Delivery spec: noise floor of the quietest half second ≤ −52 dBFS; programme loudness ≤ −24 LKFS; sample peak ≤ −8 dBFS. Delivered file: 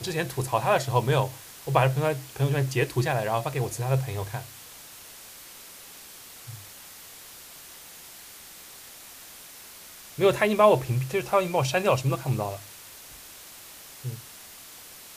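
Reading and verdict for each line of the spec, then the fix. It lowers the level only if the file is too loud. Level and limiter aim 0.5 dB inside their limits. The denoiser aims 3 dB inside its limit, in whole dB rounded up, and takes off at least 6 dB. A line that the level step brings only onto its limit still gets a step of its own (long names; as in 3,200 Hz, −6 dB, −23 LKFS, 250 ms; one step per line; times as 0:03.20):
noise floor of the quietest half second −46 dBFS: out of spec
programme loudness −25.5 LKFS: in spec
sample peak −6.5 dBFS: out of spec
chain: broadband denoise 9 dB, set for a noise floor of −46 dBFS
brickwall limiter −8.5 dBFS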